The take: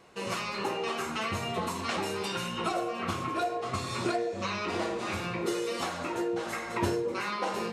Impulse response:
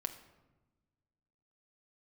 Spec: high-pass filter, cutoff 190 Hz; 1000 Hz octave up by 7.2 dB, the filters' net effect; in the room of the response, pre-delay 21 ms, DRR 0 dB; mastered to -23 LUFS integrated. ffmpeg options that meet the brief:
-filter_complex "[0:a]highpass=190,equalizer=f=1k:t=o:g=9,asplit=2[a][b];[1:a]atrim=start_sample=2205,adelay=21[c];[b][c]afir=irnorm=-1:irlink=0,volume=0.5dB[d];[a][d]amix=inputs=2:normalize=0,volume=2.5dB"

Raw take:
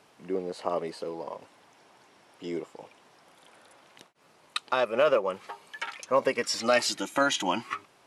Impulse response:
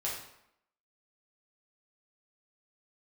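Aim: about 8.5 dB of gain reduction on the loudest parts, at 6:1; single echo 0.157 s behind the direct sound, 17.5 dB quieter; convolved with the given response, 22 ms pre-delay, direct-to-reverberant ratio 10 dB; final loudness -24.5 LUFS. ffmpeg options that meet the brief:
-filter_complex "[0:a]acompressor=threshold=-27dB:ratio=6,aecho=1:1:157:0.133,asplit=2[a][b];[1:a]atrim=start_sample=2205,adelay=22[c];[b][c]afir=irnorm=-1:irlink=0,volume=-14dB[d];[a][d]amix=inputs=2:normalize=0,volume=9.5dB"

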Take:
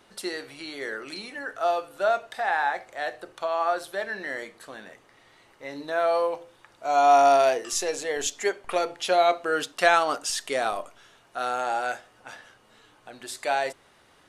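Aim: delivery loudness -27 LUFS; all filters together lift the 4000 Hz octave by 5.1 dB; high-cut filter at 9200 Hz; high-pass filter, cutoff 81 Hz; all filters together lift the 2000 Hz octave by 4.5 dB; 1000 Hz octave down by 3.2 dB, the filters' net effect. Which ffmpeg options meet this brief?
-af "highpass=81,lowpass=9.2k,equalizer=f=1k:t=o:g=-8,equalizer=f=2k:t=o:g=8,equalizer=f=4k:t=o:g=4.5,volume=-1dB"

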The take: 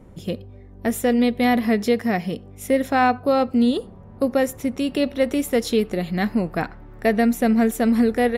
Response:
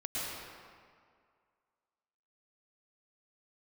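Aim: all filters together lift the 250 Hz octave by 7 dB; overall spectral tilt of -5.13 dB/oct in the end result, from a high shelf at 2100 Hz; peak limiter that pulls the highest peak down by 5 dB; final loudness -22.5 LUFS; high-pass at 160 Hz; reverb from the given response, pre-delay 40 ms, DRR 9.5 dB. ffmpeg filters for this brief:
-filter_complex "[0:a]highpass=160,equalizer=f=250:t=o:g=8.5,highshelf=f=2.1k:g=-7.5,alimiter=limit=-8dB:level=0:latency=1,asplit=2[a][b];[1:a]atrim=start_sample=2205,adelay=40[c];[b][c]afir=irnorm=-1:irlink=0,volume=-14dB[d];[a][d]amix=inputs=2:normalize=0,volume=-5.5dB"

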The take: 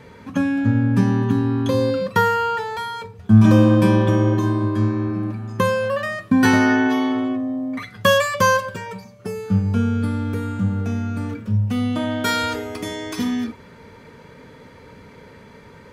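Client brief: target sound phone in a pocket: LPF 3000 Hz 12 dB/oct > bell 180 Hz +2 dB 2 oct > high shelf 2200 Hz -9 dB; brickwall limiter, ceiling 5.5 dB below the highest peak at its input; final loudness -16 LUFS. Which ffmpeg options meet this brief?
-af "alimiter=limit=-8dB:level=0:latency=1,lowpass=3k,equalizer=f=180:t=o:w=2:g=2,highshelf=f=2.2k:g=-9,volume=4dB"

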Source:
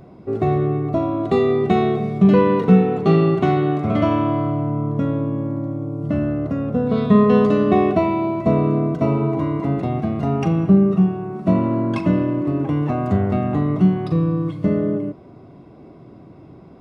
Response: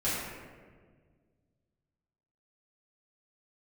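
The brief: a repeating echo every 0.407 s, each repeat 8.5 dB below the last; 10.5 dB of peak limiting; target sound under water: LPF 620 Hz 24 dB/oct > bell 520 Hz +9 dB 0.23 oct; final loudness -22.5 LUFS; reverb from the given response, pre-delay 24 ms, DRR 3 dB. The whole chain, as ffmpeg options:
-filter_complex "[0:a]alimiter=limit=-12.5dB:level=0:latency=1,aecho=1:1:407|814|1221|1628:0.376|0.143|0.0543|0.0206,asplit=2[a][b];[1:a]atrim=start_sample=2205,adelay=24[c];[b][c]afir=irnorm=-1:irlink=0,volume=-12dB[d];[a][d]amix=inputs=2:normalize=0,lowpass=f=620:w=0.5412,lowpass=f=620:w=1.3066,equalizer=f=520:t=o:w=0.23:g=9,volume=-3.5dB"

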